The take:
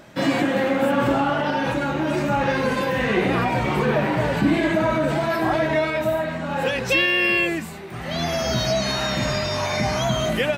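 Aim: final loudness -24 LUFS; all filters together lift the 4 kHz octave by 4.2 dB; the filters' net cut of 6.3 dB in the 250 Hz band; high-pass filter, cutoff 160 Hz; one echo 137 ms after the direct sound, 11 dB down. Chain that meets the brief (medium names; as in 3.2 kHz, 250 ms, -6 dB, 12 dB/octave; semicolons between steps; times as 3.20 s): high-pass 160 Hz; peaking EQ 250 Hz -7.5 dB; peaking EQ 4 kHz +5.5 dB; delay 137 ms -11 dB; trim -2.5 dB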